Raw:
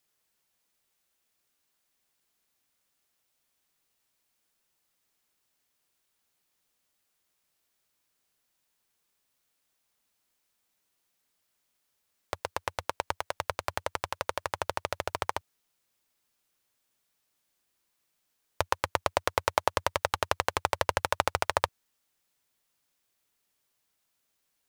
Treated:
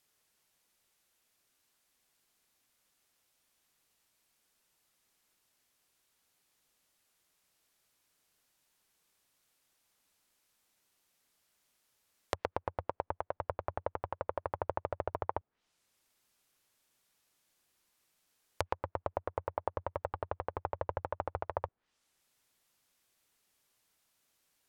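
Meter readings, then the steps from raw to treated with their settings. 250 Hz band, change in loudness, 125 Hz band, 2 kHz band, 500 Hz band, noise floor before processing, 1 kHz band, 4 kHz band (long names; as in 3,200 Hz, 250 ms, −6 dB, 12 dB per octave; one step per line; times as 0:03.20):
−3.5 dB, −8.0 dB, −3.0 dB, −15.0 dB, −4.5 dB, −78 dBFS, −7.5 dB, −19.5 dB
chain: brickwall limiter −13.5 dBFS, peak gain reduction 10 dB
treble cut that deepens with the level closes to 870 Hz, closed at −38.5 dBFS
level +2.5 dB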